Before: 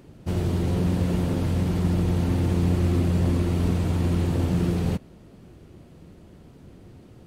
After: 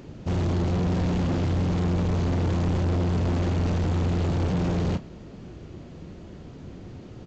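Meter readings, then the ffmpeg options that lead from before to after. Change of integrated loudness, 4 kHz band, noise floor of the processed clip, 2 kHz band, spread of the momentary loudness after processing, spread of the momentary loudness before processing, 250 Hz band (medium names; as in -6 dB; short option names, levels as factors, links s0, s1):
-1.0 dB, 0.0 dB, -43 dBFS, +1.0 dB, 18 LU, 4 LU, -2.0 dB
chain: -filter_complex "[0:a]aresample=16000,asoftclip=type=tanh:threshold=0.0376,aresample=44100,asplit=2[s0][s1];[s1]adelay=33,volume=0.211[s2];[s0][s2]amix=inputs=2:normalize=0,volume=2"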